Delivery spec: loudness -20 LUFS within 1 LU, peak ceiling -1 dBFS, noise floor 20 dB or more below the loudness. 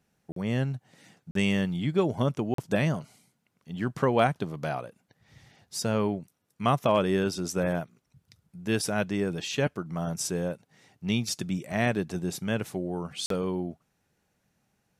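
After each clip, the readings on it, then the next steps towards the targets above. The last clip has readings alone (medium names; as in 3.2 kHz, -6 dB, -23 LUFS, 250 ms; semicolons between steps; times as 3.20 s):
dropouts 4; longest dropout 43 ms; loudness -29.0 LUFS; peak level -11.5 dBFS; loudness target -20.0 LUFS
-> interpolate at 0.32/1.31/2.54/13.26 s, 43 ms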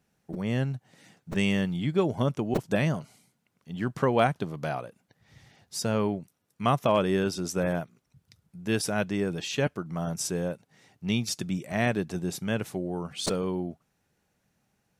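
dropouts 0; loudness -29.0 LUFS; peak level -11.5 dBFS; loudness target -20.0 LUFS
-> trim +9 dB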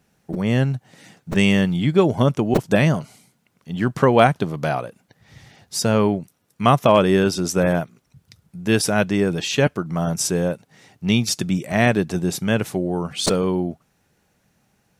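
loudness -20.0 LUFS; peak level -2.5 dBFS; noise floor -66 dBFS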